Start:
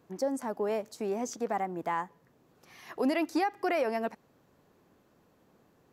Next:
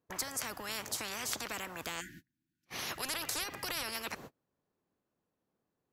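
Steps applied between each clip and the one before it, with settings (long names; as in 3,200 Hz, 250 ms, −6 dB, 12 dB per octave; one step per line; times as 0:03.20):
time-frequency box erased 0:02.00–0:02.66, 360–1,400 Hz
noise gate −54 dBFS, range −37 dB
every bin compressed towards the loudest bin 10 to 1
level +1.5 dB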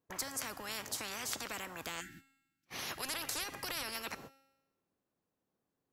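tuned comb filter 270 Hz, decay 0.98 s, mix 60%
level +5.5 dB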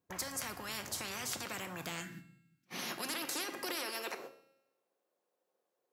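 soft clipping −25.5 dBFS, distortion −23 dB
high-pass filter sweep 72 Hz → 500 Hz, 0:00.79–0:04.55
rectangular room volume 820 cubic metres, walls furnished, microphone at 0.93 metres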